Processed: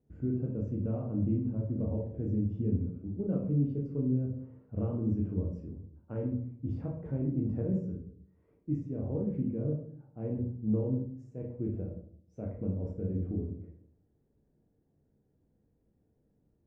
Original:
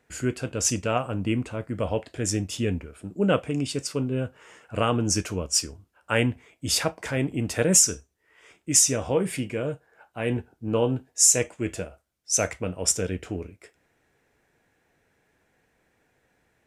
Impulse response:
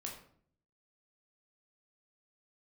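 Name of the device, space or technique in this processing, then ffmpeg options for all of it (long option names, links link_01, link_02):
television next door: -filter_complex "[0:a]acompressor=threshold=-24dB:ratio=4,lowpass=300[link_01];[1:a]atrim=start_sample=2205[link_02];[link_01][link_02]afir=irnorm=-1:irlink=0,volume=2.5dB"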